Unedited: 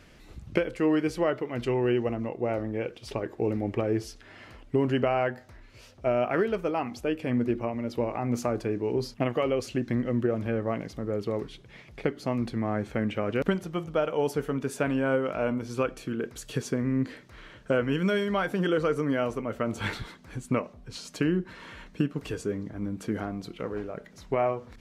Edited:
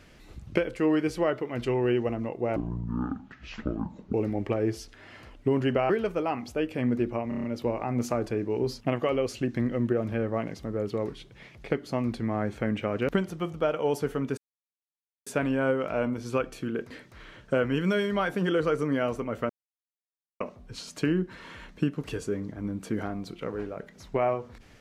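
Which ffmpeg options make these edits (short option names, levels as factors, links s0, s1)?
-filter_complex "[0:a]asplit=13[s0][s1][s2][s3][s4][s5][s6][s7][s8][s9][s10][s11][s12];[s0]atrim=end=2.564[s13];[s1]atrim=start=2.56:end=3.41,asetpts=PTS-STARTPTS,asetrate=23814,aresample=44100[s14];[s2]atrim=start=3.406:end=5.172[s15];[s3]atrim=start=6.378:end=7.802[s16];[s4]atrim=start=7.768:end=7.802[s17];[s5]atrim=start=7.768:end=7.802[s18];[s6]atrim=start=7.768:end=7.802[s19];[s7]atrim=start=7.768:end=7.802[s20];[s8]atrim=start=7.768:end=14.71,asetpts=PTS-STARTPTS,afade=t=out:st=6.938:d=0.004:c=hsin,apad=pad_dur=0.89[s21];[s9]atrim=start=14.71:end=16.352,asetpts=PTS-STARTPTS,afade=t=in:d=0.004:c=hsin[s22];[s10]atrim=start=17.078:end=19.67,asetpts=PTS-STARTPTS,afade=t=out:st=2.588:d=0.004:c=hsin[s23];[s11]atrim=start=19.67:end=20.58,asetpts=PTS-STARTPTS,volume=0[s24];[s12]atrim=start=20.58,asetpts=PTS-STARTPTS,afade=t=in:d=0.004:c=hsin[s25];[s13][s14]acrossfade=d=0.004:c1=hsin:c2=hsin[s26];[s26][s15]acrossfade=d=0.004:c1=hsin:c2=hsin[s27];[s27][s16]acrossfade=d=0.004:c1=hsin:c2=hsin[s28];[s28][s17]acrossfade=d=0.004:c1=hsin:c2=hsin[s29];[s29][s18]acrossfade=d=0.004:c1=hsin:c2=hsin[s30];[s30][s19]acrossfade=d=0.004:c1=hsin:c2=hsin[s31];[s31][s20]acrossfade=d=0.004:c1=hsin:c2=hsin[s32];[s21][s22]concat=n=2:v=0:a=1[s33];[s32][s33]acrossfade=d=0.004:c1=hsin:c2=hsin[s34];[s23][s24][s25]concat=n=3:v=0:a=1[s35];[s34][s35]acrossfade=d=0.004:c1=hsin:c2=hsin"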